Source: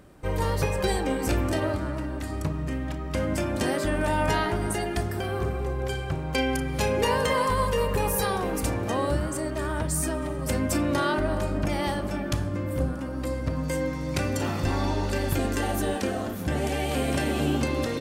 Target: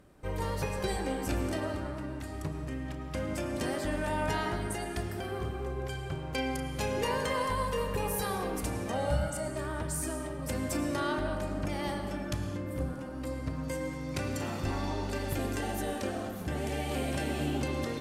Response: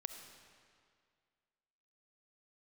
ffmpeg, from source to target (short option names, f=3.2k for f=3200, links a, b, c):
-filter_complex "[0:a]asettb=1/sr,asplit=3[a][b][c];[a]atrim=end=8.934[d];[b]atrim=start=8.93:end=9.48,asetpts=PTS-STARTPTS,afade=t=in:d=0.004:c=qsin,afade=t=out:st=0.546:d=0.004:c=qsin,aecho=1:1:1.4:0.95,atrim=end_sample=24255[e];[c]atrim=start=9.476[f];[d][e]acrossfade=d=0.004:c1=hsin:c2=qsin[g];[g][f]acrossfade=d=0.004:c1=qsin:c2=hsin[h];[1:a]atrim=start_sample=2205,afade=t=out:st=0.2:d=0.01,atrim=end_sample=9261,asetrate=27342,aresample=44100[i];[h][i]afir=irnorm=-1:irlink=0,volume=-6dB"